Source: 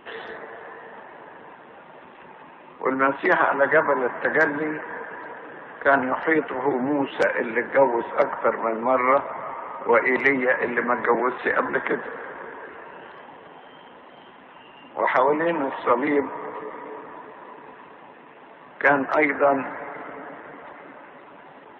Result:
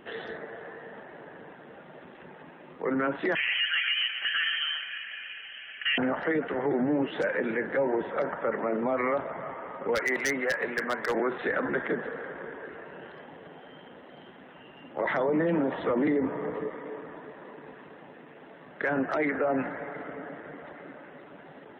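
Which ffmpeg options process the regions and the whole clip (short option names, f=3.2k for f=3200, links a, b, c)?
-filter_complex "[0:a]asettb=1/sr,asplit=3[a][b][c];[a]atrim=end=3.354[d];[b]atrim=start=3.35:end=5.98,asetpts=PTS-STARTPTS,afade=t=in:d=0.004:c=qsin,afade=t=out:st=2.626:d=0.004:c=qsin,aecho=1:1:5.4:0.37,atrim=end_sample=115983,aecho=1:1:120:0.266,atrim=end_sample=115983,lowpass=f=2.9k:t=q:w=0.5098,lowpass=f=2.9k:t=q:w=0.6013,lowpass=f=2.9k:t=q:w=0.9,lowpass=f=2.9k:t=q:w=2.563,afreqshift=-3400[e];[c]atrim=start=5.976[f];[d][e]acrossfade=d=0.004:c1=hsin:c2=qsin[g];[g][f]acrossfade=d=0.004:c1=qsin:c2=hsin,asettb=1/sr,asplit=3[h][i][j];[h]atrim=end=9.954[k];[i]atrim=start=9.95:end=11.16,asetpts=PTS-STARTPTS,afade=t=in:d=0.004:c=qsin,afade=t=out:st=1.206:d=0.004:c=qsin,lowshelf=f=460:g=-12,aeval=exprs='0.178*(abs(mod(val(0)/0.178+3,4)-2)-1)':c=same[l];[j]atrim=start=11.156[m];[k][l]acrossfade=d=0.004:c1=hsin:c2=qsin[n];[n][m]acrossfade=d=0.004:c1=qsin:c2=hsin,asettb=1/sr,asplit=3[o][p][q];[o]atrim=end=15.044[r];[p]atrim=start=15.04:end=16.68,asetpts=PTS-STARTPTS,afade=t=in:d=0.004:c=qsin,afade=t=out:st=1.636:d=0.004:c=qsin,lowshelf=f=370:g=8,bandreject=f=50:t=h:w=6,bandreject=f=100:t=h:w=6,bandreject=f=150:t=h:w=6[s];[q]atrim=start=16.676[t];[r][s]acrossfade=d=0.004:c1=hsin:c2=qsin[u];[u][t]acrossfade=d=0.004:c1=qsin:c2=hsin,equalizer=f=160:t=o:w=0.67:g=4,equalizer=f=1k:t=o:w=0.67:g=-10,equalizer=f=2.5k:t=o:w=0.67:g=-5,alimiter=limit=-19dB:level=0:latency=1:release=43"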